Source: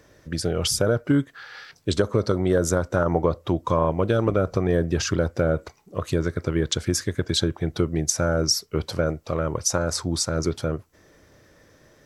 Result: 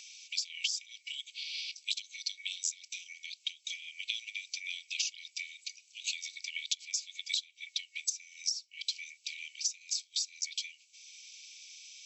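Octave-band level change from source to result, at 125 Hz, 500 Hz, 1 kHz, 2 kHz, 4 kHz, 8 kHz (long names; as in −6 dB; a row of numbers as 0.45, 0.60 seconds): below −40 dB, below −40 dB, below −40 dB, −7.5 dB, −4.0 dB, −7.5 dB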